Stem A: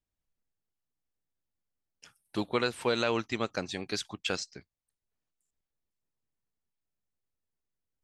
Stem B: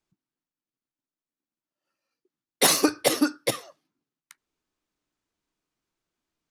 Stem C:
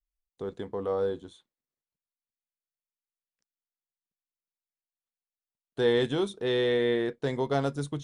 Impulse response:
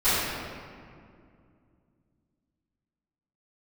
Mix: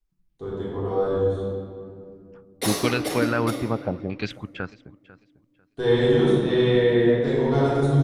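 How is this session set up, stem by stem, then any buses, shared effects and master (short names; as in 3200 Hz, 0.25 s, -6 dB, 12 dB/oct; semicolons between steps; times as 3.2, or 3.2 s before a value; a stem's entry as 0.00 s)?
0.0 dB, 0.30 s, no send, echo send -22.5 dB, tone controls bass +6 dB, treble +5 dB; LFO low-pass saw down 0.79 Hz 560–3200 Hz; auto duck -17 dB, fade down 1.50 s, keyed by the third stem
-11.0 dB, 0.00 s, send -14 dB, no echo send, dry
-8.5 dB, 0.00 s, send -4.5 dB, no echo send, dry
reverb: on, RT60 2.3 s, pre-delay 3 ms
echo: feedback echo 0.496 s, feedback 21%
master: low shelf 230 Hz +9 dB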